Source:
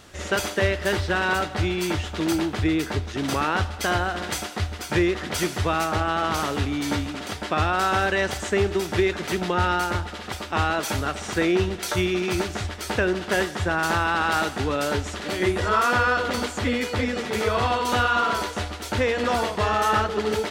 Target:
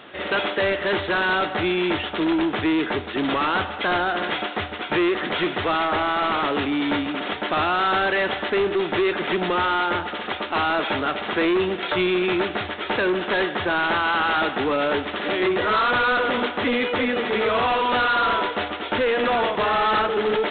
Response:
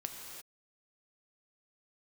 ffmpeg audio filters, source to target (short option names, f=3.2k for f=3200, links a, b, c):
-af "highpass=240,aresample=8000,asoftclip=type=tanh:threshold=-24.5dB,aresample=44100,volume=7.5dB"